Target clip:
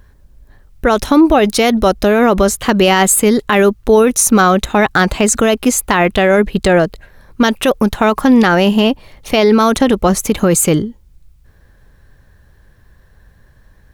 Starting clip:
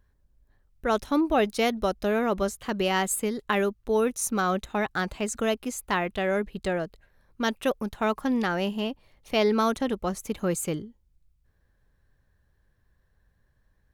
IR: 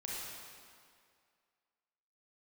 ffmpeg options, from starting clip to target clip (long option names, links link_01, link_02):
-af "alimiter=level_in=21dB:limit=-1dB:release=50:level=0:latency=1,volume=-1dB"